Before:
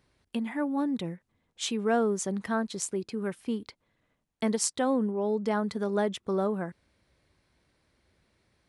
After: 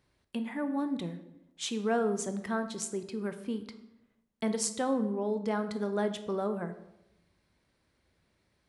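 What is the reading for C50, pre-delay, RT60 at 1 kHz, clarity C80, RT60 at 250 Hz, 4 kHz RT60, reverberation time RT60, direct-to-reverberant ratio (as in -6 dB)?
11.5 dB, 17 ms, 0.85 s, 14.0 dB, 1.0 s, 0.60 s, 0.85 s, 9.0 dB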